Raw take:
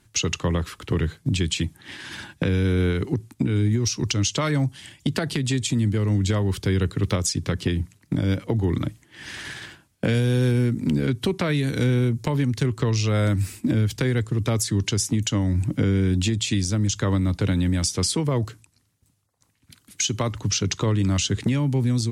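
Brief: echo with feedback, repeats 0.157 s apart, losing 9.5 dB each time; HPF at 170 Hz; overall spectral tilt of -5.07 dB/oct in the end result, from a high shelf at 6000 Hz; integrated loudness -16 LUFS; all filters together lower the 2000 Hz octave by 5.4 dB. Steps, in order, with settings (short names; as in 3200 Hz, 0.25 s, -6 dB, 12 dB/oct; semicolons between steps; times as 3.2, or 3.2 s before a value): HPF 170 Hz; bell 2000 Hz -6.5 dB; high shelf 6000 Hz -5 dB; feedback echo 0.157 s, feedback 33%, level -9.5 dB; gain +10.5 dB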